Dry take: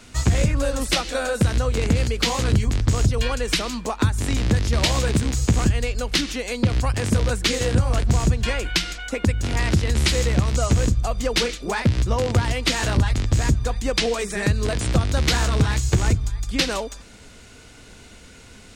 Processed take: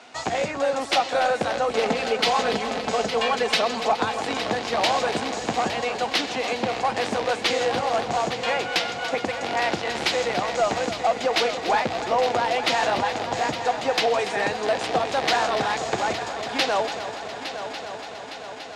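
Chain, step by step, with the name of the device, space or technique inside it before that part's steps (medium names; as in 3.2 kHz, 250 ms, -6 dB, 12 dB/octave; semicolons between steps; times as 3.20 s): intercom (band-pass 460–4600 Hz; peaking EQ 760 Hz +12 dB 0.51 oct; saturation -14 dBFS, distortion -19 dB); 1.68–3.80 s: comb 4.6 ms, depth 71%; peaking EQ 180 Hz +3 dB 2.1 oct; multi-head delay 287 ms, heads first and third, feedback 73%, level -12 dB; trim +1 dB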